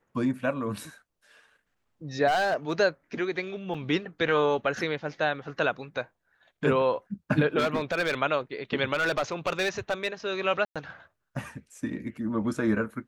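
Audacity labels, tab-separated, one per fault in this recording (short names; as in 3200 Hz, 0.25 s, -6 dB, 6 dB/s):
2.270000	2.730000	clipped -20.5 dBFS
3.740000	3.750000	gap 5.1 ms
7.580000	8.150000	clipped -21.5 dBFS
8.930000	10.080000	clipped -21.5 dBFS
10.650000	10.760000	gap 0.106 s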